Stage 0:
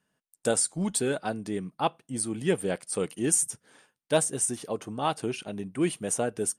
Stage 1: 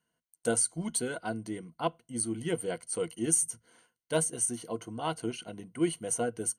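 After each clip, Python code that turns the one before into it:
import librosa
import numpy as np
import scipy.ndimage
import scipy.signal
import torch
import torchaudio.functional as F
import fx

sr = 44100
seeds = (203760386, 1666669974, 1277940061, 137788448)

y = fx.ripple_eq(x, sr, per_octave=1.9, db=12)
y = F.gain(torch.from_numpy(y), -6.0).numpy()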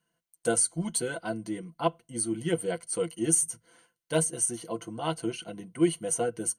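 y = x + 0.53 * np.pad(x, (int(5.9 * sr / 1000.0), 0))[:len(x)]
y = F.gain(torch.from_numpy(y), 1.0).numpy()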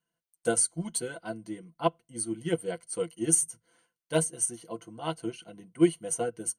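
y = fx.upward_expand(x, sr, threshold_db=-37.0, expansion=1.5)
y = F.gain(torch.from_numpy(y), 2.5).numpy()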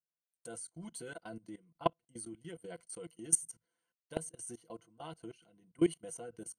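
y = fx.level_steps(x, sr, step_db=21)
y = F.gain(torch.from_numpy(y), -2.5).numpy()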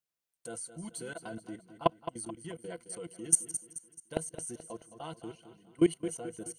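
y = fx.echo_feedback(x, sr, ms=216, feedback_pct=44, wet_db=-12)
y = F.gain(torch.from_numpy(y), 4.0).numpy()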